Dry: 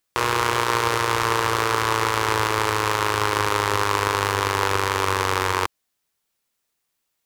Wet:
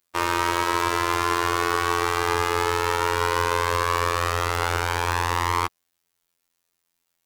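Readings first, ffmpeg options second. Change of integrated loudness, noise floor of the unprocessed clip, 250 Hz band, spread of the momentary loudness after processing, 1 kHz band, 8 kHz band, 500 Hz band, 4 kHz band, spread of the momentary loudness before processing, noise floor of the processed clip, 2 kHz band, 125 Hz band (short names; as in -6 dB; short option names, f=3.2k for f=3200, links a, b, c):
-1.5 dB, -77 dBFS, -0.5 dB, 2 LU, -1.0 dB, -2.5 dB, -1.5 dB, -3.0 dB, 1 LU, -78 dBFS, -2.0 dB, -2.0 dB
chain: -af "acontrast=46,afftfilt=real='hypot(re,im)*cos(PI*b)':imag='0':win_size=2048:overlap=0.75,volume=-2.5dB"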